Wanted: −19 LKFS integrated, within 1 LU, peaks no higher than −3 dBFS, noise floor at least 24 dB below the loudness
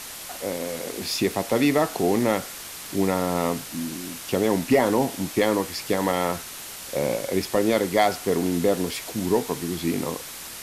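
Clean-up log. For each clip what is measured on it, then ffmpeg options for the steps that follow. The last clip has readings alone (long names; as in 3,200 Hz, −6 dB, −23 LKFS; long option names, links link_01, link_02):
background noise floor −38 dBFS; target noise floor −49 dBFS; integrated loudness −24.5 LKFS; sample peak −9.5 dBFS; target loudness −19.0 LKFS
→ -af "afftdn=noise_reduction=11:noise_floor=-38"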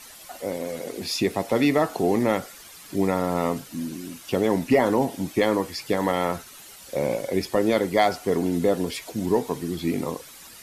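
background noise floor −45 dBFS; target noise floor −49 dBFS
→ -af "afftdn=noise_reduction=6:noise_floor=-45"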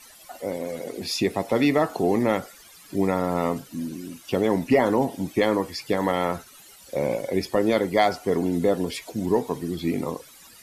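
background noise floor −49 dBFS; integrated loudness −25.0 LKFS; sample peak −9.5 dBFS; target loudness −19.0 LKFS
→ -af "volume=6dB"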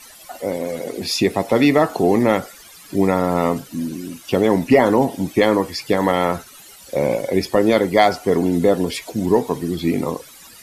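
integrated loudness −19.0 LKFS; sample peak −3.5 dBFS; background noise floor −43 dBFS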